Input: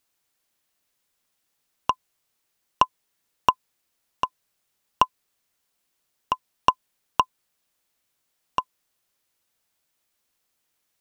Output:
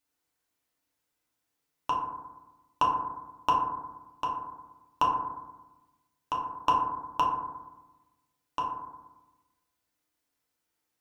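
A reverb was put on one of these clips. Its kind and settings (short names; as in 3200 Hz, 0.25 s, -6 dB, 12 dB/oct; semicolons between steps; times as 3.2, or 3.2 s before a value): FDN reverb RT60 1.1 s, low-frequency decay 1.3×, high-frequency decay 0.3×, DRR -4.5 dB; gain -10 dB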